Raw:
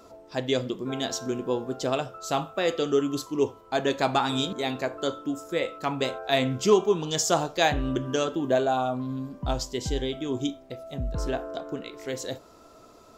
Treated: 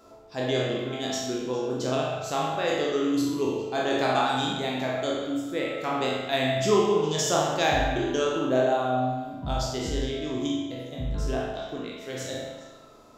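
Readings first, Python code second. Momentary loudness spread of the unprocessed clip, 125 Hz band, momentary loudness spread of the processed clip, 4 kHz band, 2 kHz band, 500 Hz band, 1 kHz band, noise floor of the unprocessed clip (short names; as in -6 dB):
10 LU, +1.0 dB, 10 LU, +0.5 dB, +2.0 dB, +0.5 dB, +1.5 dB, -52 dBFS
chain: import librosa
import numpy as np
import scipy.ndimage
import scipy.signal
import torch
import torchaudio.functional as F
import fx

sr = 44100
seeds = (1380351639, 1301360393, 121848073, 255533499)

y = fx.spec_trails(x, sr, decay_s=0.87)
y = fx.echo_stepped(y, sr, ms=136, hz=750.0, octaves=1.4, feedback_pct=70, wet_db=-11)
y = fx.rev_spring(y, sr, rt60_s=1.0, pass_ms=(39,), chirp_ms=25, drr_db=0.5)
y = F.gain(torch.from_numpy(y), -5.0).numpy()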